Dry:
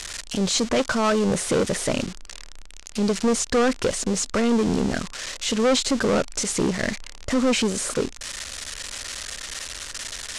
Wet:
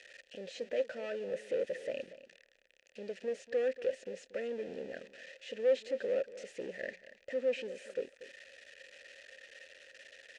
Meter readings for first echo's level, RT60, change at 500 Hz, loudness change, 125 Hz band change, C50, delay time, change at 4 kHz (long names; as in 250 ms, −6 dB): −15.5 dB, no reverb audible, −10.0 dB, −13.5 dB, below −30 dB, no reverb audible, 236 ms, −23.5 dB